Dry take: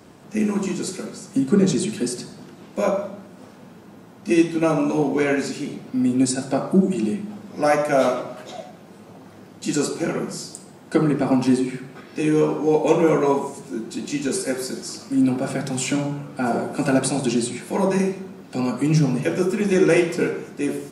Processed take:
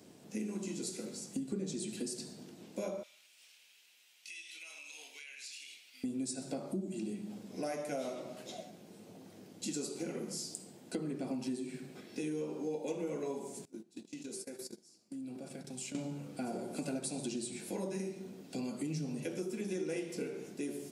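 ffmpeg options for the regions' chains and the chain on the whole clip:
ffmpeg -i in.wav -filter_complex "[0:a]asettb=1/sr,asplit=3[link_01][link_02][link_03];[link_01]atrim=end=3.034[link_04];[link_02]atrim=start=3.03:end=6.04,asetpts=PTS-STARTPTS,afade=type=in:duration=0.004:curve=qsin,afade=type=out:start_time=3.006:duration=0.004:curve=qsin,highpass=frequency=2600:width_type=q:width=2.4,acompressor=threshold=-37dB:ratio=6:attack=3.2:release=140:knee=1:detection=peak[link_05];[link_03]atrim=start=6.036[link_06];[link_04][link_05]acrossfade=duration=0.004:curve1=hsin:curve2=qsin[link_07];[link_07][link_06]acrossfade=duration=0.004:curve1=qsin:curve2=hsin,asettb=1/sr,asplit=3[link_08][link_09][link_10];[link_08]atrim=end=13.654[link_11];[link_09]atrim=start=13.65:end=15.95,asetpts=PTS-STARTPTS,afade=type=in:duration=0.004:curve=qsin,afade=type=out:start_time=2.296:duration=0.004:curve=qsin,agate=range=-24dB:threshold=-28dB:ratio=16:release=100:detection=peak,acompressor=threshold=-32dB:ratio=8:attack=3.2:release=140:knee=1:detection=peak[link_12];[link_10]atrim=start=15.946[link_13];[link_11][link_12]acrossfade=duration=0.004:curve1=hsin:curve2=qsin[link_14];[link_14][link_13]acrossfade=duration=0.004:curve1=qsin:curve2=hsin,highpass=frequency=280:poles=1,equalizer=frequency=1200:width_type=o:width=1.7:gain=-13.5,acompressor=threshold=-32dB:ratio=4,volume=-4.5dB" out.wav

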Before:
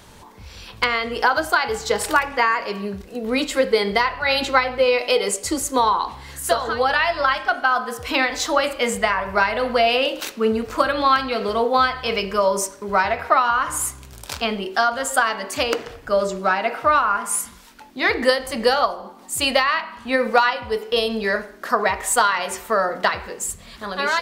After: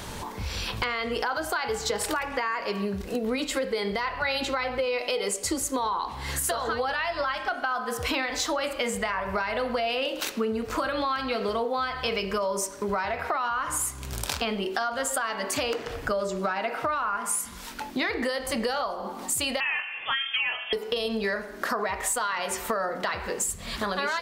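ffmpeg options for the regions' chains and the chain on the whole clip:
ffmpeg -i in.wav -filter_complex "[0:a]asettb=1/sr,asplit=3[link_01][link_02][link_03];[link_01]atrim=end=19.604[link_04];[link_02]atrim=start=19.6:end=20.73,asetpts=PTS-STARTPTS,afade=type=in:duration=0.004:curve=qsin,afade=type=out:start_time=1.126:duration=0.004:curve=qsin,highpass=660,asplit=2[link_05][link_06];[link_06]adelay=23,volume=-7dB[link_07];[link_05][link_07]amix=inputs=2:normalize=0,atrim=end_sample=49833,lowpass=frequency=3100:width_type=q:width=0.5098,lowpass=frequency=3100:width_type=q:width=0.6013,lowpass=frequency=3100:width_type=q:width=0.9,lowpass=frequency=3100:width_type=q:width=2.563,afreqshift=-3700[link_08];[link_03]atrim=start=20.726[link_09];[link_04][link_08]acrossfade=duration=0.004:curve1=hsin:curve2=qsin[link_10];[link_10][link_09]acrossfade=duration=0.004:curve1=qsin:curve2=hsin,alimiter=limit=-12.5dB:level=0:latency=1:release=20,acompressor=threshold=-35dB:ratio=6,volume=8.5dB" out.wav

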